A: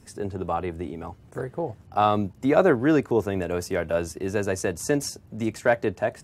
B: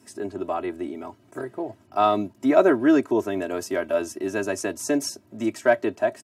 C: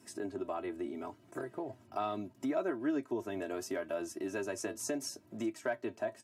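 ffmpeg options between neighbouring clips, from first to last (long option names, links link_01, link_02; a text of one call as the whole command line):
ffmpeg -i in.wav -af "highpass=frequency=130:width=0.5412,highpass=frequency=130:width=1.3066,aecho=1:1:3.1:0.82,volume=-1.5dB" out.wav
ffmpeg -i in.wav -af "flanger=delay=5.8:depth=3.3:regen=60:speed=0.74:shape=sinusoidal,acompressor=threshold=-37dB:ratio=2.5" out.wav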